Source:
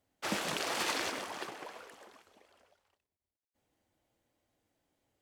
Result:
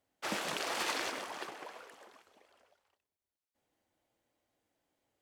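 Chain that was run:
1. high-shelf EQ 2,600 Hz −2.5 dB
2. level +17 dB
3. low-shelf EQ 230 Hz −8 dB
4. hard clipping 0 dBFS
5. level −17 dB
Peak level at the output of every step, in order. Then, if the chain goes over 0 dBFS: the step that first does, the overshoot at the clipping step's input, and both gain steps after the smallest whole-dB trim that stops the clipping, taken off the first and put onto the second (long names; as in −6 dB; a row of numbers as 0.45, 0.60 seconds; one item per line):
−20.0, −3.0, −4.0, −4.0, −21.0 dBFS
no step passes full scale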